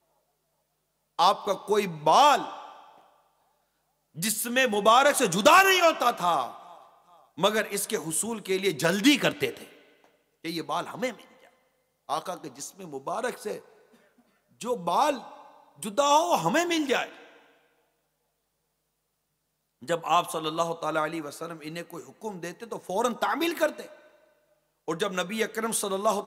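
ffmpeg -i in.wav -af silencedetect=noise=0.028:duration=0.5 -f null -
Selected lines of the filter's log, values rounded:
silence_start: 0.00
silence_end: 1.19 | silence_duration: 1.19
silence_start: 2.54
silence_end: 4.20 | silence_duration: 1.65
silence_start: 6.50
silence_end: 7.39 | silence_duration: 0.88
silence_start: 9.57
silence_end: 10.45 | silence_duration: 0.88
silence_start: 11.11
silence_end: 12.10 | silence_duration: 0.99
silence_start: 13.57
silence_end: 14.61 | silence_duration: 1.04
silence_start: 15.18
silence_end: 15.83 | silence_duration: 0.64
silence_start: 17.04
silence_end: 19.89 | silence_duration: 2.84
silence_start: 23.82
silence_end: 24.88 | silence_duration: 1.06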